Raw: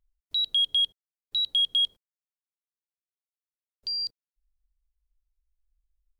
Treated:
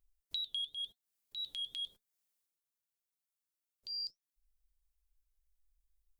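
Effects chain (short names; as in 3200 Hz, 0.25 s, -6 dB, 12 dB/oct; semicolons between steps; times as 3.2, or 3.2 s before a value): high shelf 5500 Hz +10 dB; compressor 3:1, threshold -38 dBFS, peak gain reduction 14 dB; 0.65–3.98 transient shaper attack -9 dB, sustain +8 dB; flange 0.91 Hz, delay 2.5 ms, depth 5.7 ms, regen +79%; gain +1 dB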